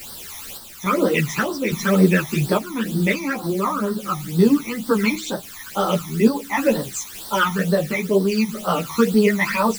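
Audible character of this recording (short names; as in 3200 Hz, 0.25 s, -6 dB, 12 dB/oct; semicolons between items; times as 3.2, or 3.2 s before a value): a quantiser's noise floor 6-bit, dither triangular; phasing stages 12, 2.1 Hz, lowest notch 470–2400 Hz; random-step tremolo; a shimmering, thickened sound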